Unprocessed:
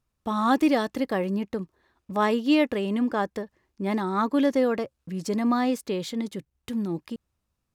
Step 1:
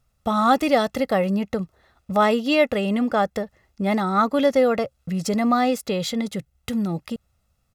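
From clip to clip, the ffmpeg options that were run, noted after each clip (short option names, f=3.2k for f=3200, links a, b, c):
-filter_complex "[0:a]asplit=2[a][b];[b]acompressor=threshold=-31dB:ratio=6,volume=-2dB[c];[a][c]amix=inputs=2:normalize=0,aecho=1:1:1.5:0.6,volume=2.5dB"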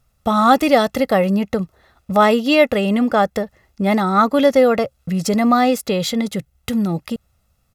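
-af "equalizer=f=12k:w=3.1:g=4.5,volume=5dB"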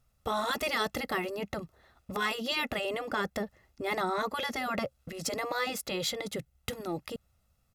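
-af "afftfilt=real='re*lt(hypot(re,im),0.794)':imag='im*lt(hypot(re,im),0.794)':win_size=1024:overlap=0.75,volume=-8dB"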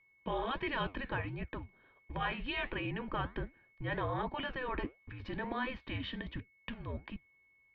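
-af "flanger=delay=4.6:depth=9.9:regen=-78:speed=1.4:shape=triangular,highpass=f=160:t=q:w=0.5412,highpass=f=160:t=q:w=1.307,lowpass=f=3.4k:t=q:w=0.5176,lowpass=f=3.4k:t=q:w=0.7071,lowpass=f=3.4k:t=q:w=1.932,afreqshift=-260,aeval=exprs='val(0)+0.000501*sin(2*PI*2200*n/s)':c=same"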